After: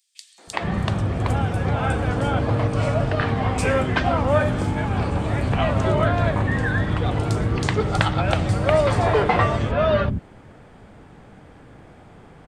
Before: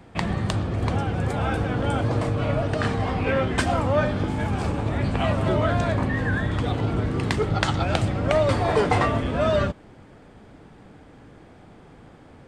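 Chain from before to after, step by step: three bands offset in time highs, mids, lows 380/470 ms, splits 300/4500 Hz; trim +3 dB

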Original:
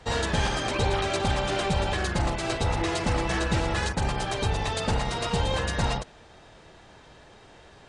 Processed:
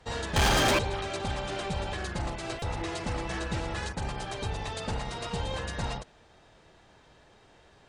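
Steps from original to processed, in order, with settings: 0.36–0.79 s: waveshaping leveller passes 5; buffer glitch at 2.59 s, samples 128, times 10; trim -7 dB

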